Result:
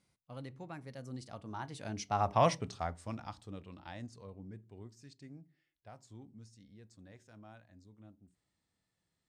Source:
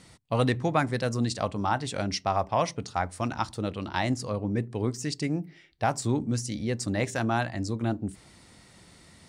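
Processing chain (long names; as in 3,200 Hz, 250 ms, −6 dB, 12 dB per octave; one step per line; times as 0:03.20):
source passing by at 0:02.45, 23 m/s, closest 3.9 metres
harmonic and percussive parts rebalanced harmonic +5 dB
level −3 dB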